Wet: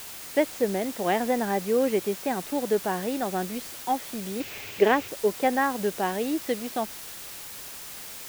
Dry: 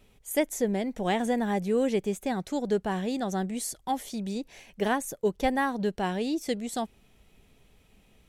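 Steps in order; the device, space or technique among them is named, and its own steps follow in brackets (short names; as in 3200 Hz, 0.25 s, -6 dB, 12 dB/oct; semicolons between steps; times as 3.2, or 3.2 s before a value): wax cylinder (BPF 270–2600 Hz; wow and flutter; white noise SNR 12 dB); 4.4–5.08 fifteen-band EQ 100 Hz +11 dB, 400 Hz +8 dB, 2500 Hz +9 dB, 10000 Hz -7 dB; gain +3.5 dB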